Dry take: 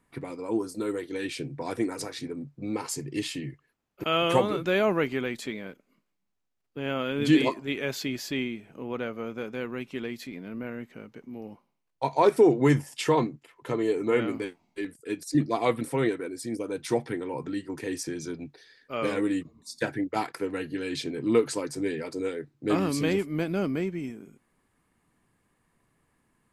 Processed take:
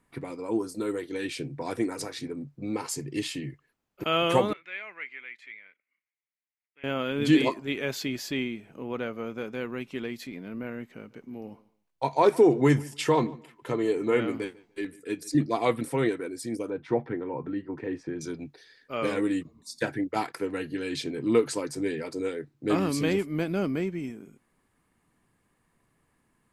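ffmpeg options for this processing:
-filter_complex "[0:a]asettb=1/sr,asplit=3[s0][s1][s2];[s0]atrim=end=4.534[s3];[s1]atrim=start=4.53:end=6.84,asetpts=PTS-STARTPTS,afade=t=in:d=0.004:c=qsin,afade=t=out:st=2.306:d=0.004:c=qsin,bandpass=f=2100:t=q:w=5.4[s4];[s2]atrim=start=6.836[s5];[s3][s4]acrossfade=d=0.004:c1=hsin:c2=qsin[s6];[s6][s5]acrossfade=d=0.004:c1=qsin:c2=hsin,asettb=1/sr,asplit=3[s7][s8][s9];[s7]atrim=end=10.924[s10];[s8]atrim=start=10.92:end=15.34,asetpts=PTS-STARTPTS,afade=t=in:d=0.004:c=qsin,afade=t=out:st=4.416:d=0.004:c=qsin,asplit=2[s11][s12];[s12]adelay=147,lowpass=f=4800:p=1,volume=0.0841,asplit=2[s13][s14];[s14]adelay=147,lowpass=f=4800:p=1,volume=0.21[s15];[s11][s13][s15]amix=inputs=3:normalize=0,atrim=end_sample=194922[s16];[s9]atrim=start=15.336[s17];[s10][s16]acrossfade=d=0.004:c1=hsin:c2=qsin[s18];[s18][s17]acrossfade=d=0.004:c1=qsin:c2=hsin,asettb=1/sr,asplit=3[s19][s20][s21];[s19]atrim=end=16.704[s22];[s20]atrim=start=16.7:end=18.21,asetpts=PTS-STARTPTS,afade=t=in:d=0.004:c=qsin,afade=t=out:st=1.506:d=0.004:c=qsin,lowpass=1700[s23];[s21]atrim=start=18.206[s24];[s22][s23]acrossfade=d=0.004:c1=hsin:c2=qsin[s25];[s25][s24]acrossfade=d=0.004:c1=qsin:c2=hsin"

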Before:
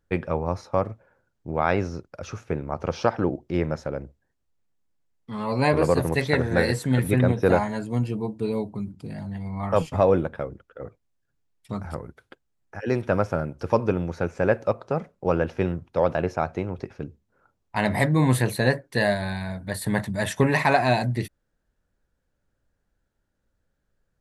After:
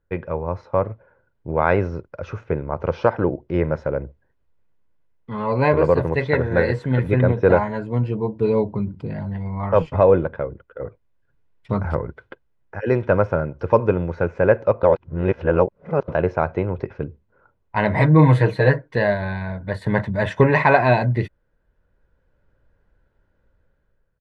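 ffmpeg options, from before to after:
-filter_complex "[0:a]asettb=1/sr,asplit=3[s0][s1][s2];[s0]atrim=end=17.954[s3];[s1]atrim=start=17.95:end=18.96,asetpts=PTS-STARTPTS,afade=t=in:d=0.004:c=qsin,afade=t=out:st=1.006:d=0.004:c=qsin,aecho=1:1:6.4:0.83,atrim=end_sample=44541[s4];[s2]atrim=start=18.956[s5];[s3][s4]acrossfade=d=0.004:c1=hsin:c2=qsin[s6];[s6][s5]acrossfade=d=0.004:c1=qsin:c2=hsin,asplit=3[s7][s8][s9];[s7]atrim=end=14.832[s10];[s8]atrim=start=14.828:end=16.082,asetpts=PTS-STARTPTS,areverse[s11];[s9]atrim=start=16.078[s12];[s10][s11]acrossfade=d=0.004:c1=hsin:c2=hsin[s13];[s13][s12]acrossfade=d=0.004:c1=hsin:c2=hsin,lowpass=2300,aecho=1:1:2:0.32,dynaudnorm=f=320:g=5:m=3.76,volume=0.891"

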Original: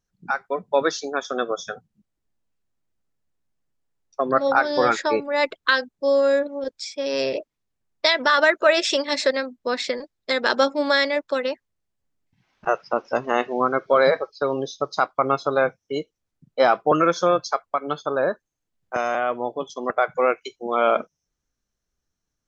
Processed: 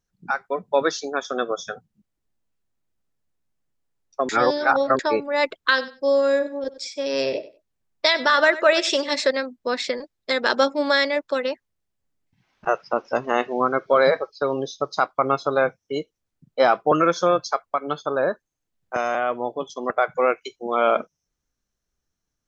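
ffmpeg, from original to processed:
-filter_complex "[0:a]asettb=1/sr,asplit=3[s0][s1][s2];[s0]atrim=end=5.604[s3];[s1]atrim=start=5.6:end=9.2,asetpts=PTS-STARTPTS,afade=t=in:d=0.004:c=qsin,afade=t=out:st=3.596:d=0.004:c=qsin,aecho=1:1:95|190:0.158|0.0285,atrim=end_sample=158760[s4];[s2]atrim=start=9.196[s5];[s3][s4]acrossfade=d=0.004:c1=hsin:c2=qsin[s6];[s6][s5]acrossfade=d=0.004:c1=qsin:c2=hsin,asplit=3[s7][s8][s9];[s7]atrim=end=4.292[s10];[s8]atrim=start=4.288:end=4.992,asetpts=PTS-STARTPTS,areverse[s11];[s9]atrim=start=4.988[s12];[s10][s11]acrossfade=d=0.004:c1=hsin:c2=hsin[s13];[s13][s12]acrossfade=d=0.004:c1=hsin:c2=hsin"

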